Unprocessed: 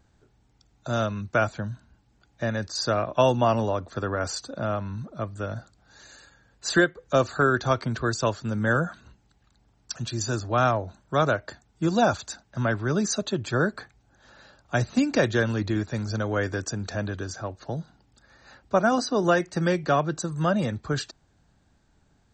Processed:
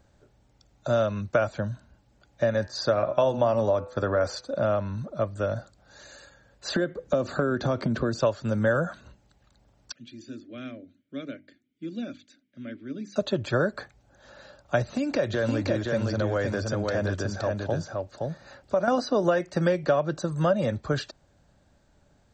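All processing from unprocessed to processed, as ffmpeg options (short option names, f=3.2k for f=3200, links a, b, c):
-filter_complex "[0:a]asettb=1/sr,asplit=3[a][b][c];[a]atrim=end=2.544[d];[b]atrim=start=2.54:end=4.49,asetpts=PTS-STARTPTS,afade=t=in:d=0.004:c=qsin,afade=t=out:st=1.946:d=0.004:c=qsin,agate=range=-7dB:threshold=-39dB:ratio=16:release=100:detection=peak,bandreject=f=2.8k:w=14,bandreject=f=125.1:t=h:w=4,bandreject=f=250.2:t=h:w=4,bandreject=f=375.3:t=h:w=4,bandreject=f=500.4:t=h:w=4,bandreject=f=625.5:t=h:w=4,bandreject=f=750.6:t=h:w=4,bandreject=f=875.7:t=h:w=4,bandreject=f=1.0008k:t=h:w=4,bandreject=f=1.1259k:t=h:w=4,bandreject=f=1.251k:t=h:w=4,bandreject=f=1.3761k:t=h:w=4,bandreject=f=1.5012k:t=h:w=4,bandreject=f=1.6263k:t=h:w=4,bandreject=f=1.7514k:t=h:w=4,bandreject=f=1.8765k:t=h:w=4,bandreject=f=2.0016k:t=h:w=4,bandreject=f=2.1267k:t=h:w=4,bandreject=f=2.2518k:t=h:w=4,bandreject=f=2.3769k:t=h:w=4,bandreject=f=2.502k:t=h:w=4,bandreject=f=2.6271k:t=h:w=4,bandreject=f=2.7522k:t=h:w=4,bandreject=f=2.8773k:t=h:w=4,bandreject=f=3.0024k:t=h:w=4[e];[c]atrim=start=4.486[f];[d][e]acrossfade=d=0.004:c1=hsin:c2=qsin[g];[g][f]acrossfade=d=0.004:c1=qsin:c2=hsin,asettb=1/sr,asplit=3[h][i][j];[h]atrim=end=6.754[k];[i]atrim=start=6.75:end=8.2,asetpts=PTS-STARTPTS,afade=t=in:d=0.004:c=qsin,afade=t=out:st=1.446:d=0.004:c=qsin,equalizer=f=230:w=0.81:g=12,acompressor=threshold=-22dB:ratio=10:attack=3.2:release=140:knee=1:detection=peak[l];[j]atrim=start=8.196[m];[k][l]acrossfade=d=0.004:c1=hsin:c2=qsin[n];[n][m]acrossfade=d=0.004:c1=qsin:c2=hsin,asettb=1/sr,asplit=3[o][p][q];[o]atrim=end=9.924[r];[p]atrim=start=9.92:end=13.16,asetpts=PTS-STARTPTS,afade=t=in:d=0.004:c=qsin,afade=t=out:st=3.236:d=0.004:c=qsin,asplit=3[s][t][u];[s]bandpass=f=270:t=q:w=8,volume=0dB[v];[t]bandpass=f=2.29k:t=q:w=8,volume=-6dB[w];[u]bandpass=f=3.01k:t=q:w=8,volume=-9dB[x];[v][w][x]amix=inputs=3:normalize=0,bandreject=f=50:t=h:w=6,bandreject=f=100:t=h:w=6,bandreject=f=150:t=h:w=6,bandreject=f=200:t=h:w=6,bandreject=f=250:t=h:w=6,bandreject=f=300:t=h:w=6,bandreject=f=350:t=h:w=6[y];[q]atrim=start=13.156[z];[r][y]acrossfade=d=0.004:c1=hsin:c2=qsin[aa];[aa][z]acrossfade=d=0.004:c1=qsin:c2=hsin,asettb=1/sr,asplit=3[ab][ac][ad];[ab]atrim=end=14.824[ae];[ac]atrim=start=14.82:end=18.88,asetpts=PTS-STARTPTS,afade=t=in:d=0.004:c=qsin,afade=t=out:st=4.056:d=0.004:c=qsin,acompressor=threshold=-25dB:ratio=5:attack=3.2:release=140:knee=1:detection=peak,aecho=1:1:519:0.708,atrim=end_sample=179046[af];[ad]atrim=start=18.876[ag];[ae][af]acrossfade=d=0.004:c1=hsin:c2=qsin[ah];[ah][ag]acrossfade=d=0.004:c1=qsin:c2=hsin,acrossover=split=5000[ai][aj];[aj]acompressor=threshold=-53dB:ratio=4:attack=1:release=60[ak];[ai][ak]amix=inputs=2:normalize=0,equalizer=f=570:t=o:w=0.3:g=10.5,acompressor=threshold=-20dB:ratio=6,volume=1dB"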